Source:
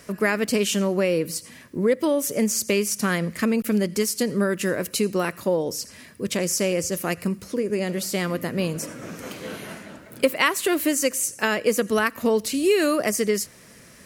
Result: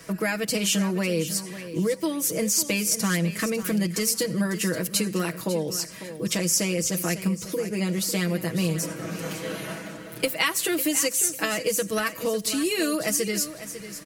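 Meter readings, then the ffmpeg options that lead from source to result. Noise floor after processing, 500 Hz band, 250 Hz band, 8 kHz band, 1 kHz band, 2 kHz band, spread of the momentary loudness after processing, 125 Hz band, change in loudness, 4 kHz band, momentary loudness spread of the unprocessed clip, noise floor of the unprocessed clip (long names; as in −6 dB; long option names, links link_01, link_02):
−40 dBFS, −5.5 dB, −2.0 dB, +2.5 dB, −4.5 dB, −2.5 dB, 10 LU, +1.5 dB, −1.5 dB, +1.5 dB, 13 LU, −48 dBFS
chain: -filter_complex "[0:a]aecho=1:1:6.2:0.88,acrossover=split=160|3000[link_01][link_02][link_03];[link_02]acompressor=threshold=-28dB:ratio=2.5[link_04];[link_01][link_04][link_03]amix=inputs=3:normalize=0,asplit=2[link_05][link_06];[link_06]aecho=0:1:549|1098|1647:0.237|0.0569|0.0137[link_07];[link_05][link_07]amix=inputs=2:normalize=0"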